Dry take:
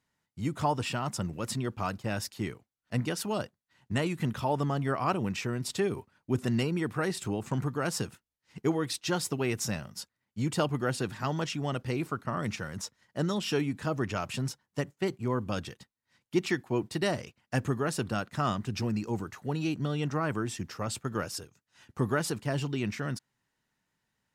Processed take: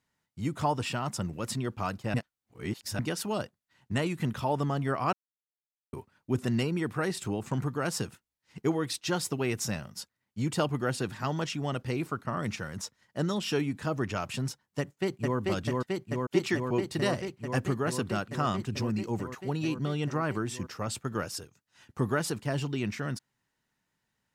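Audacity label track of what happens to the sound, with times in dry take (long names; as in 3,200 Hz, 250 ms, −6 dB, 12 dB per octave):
2.140000	2.990000	reverse
5.130000	5.930000	silence
14.790000	15.380000	delay throw 440 ms, feedback 85%, level −1 dB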